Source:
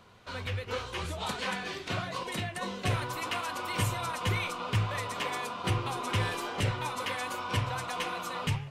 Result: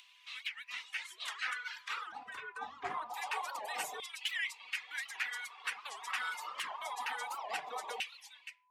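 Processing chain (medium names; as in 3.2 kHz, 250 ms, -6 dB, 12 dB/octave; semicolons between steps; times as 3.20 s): fade out at the end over 0.79 s; high-pass 160 Hz 24 dB/octave; band-stop 960 Hz, Q 7.4; frequency shift -270 Hz; 2.12–3.14 s: tilt EQ -4.5 dB/octave; reverb removal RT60 1.4 s; whistle 1 kHz -57 dBFS; upward compressor, threshold -46 dBFS; LFO high-pass saw down 0.25 Hz 610–2800 Hz; warped record 78 rpm, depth 250 cents; trim -4.5 dB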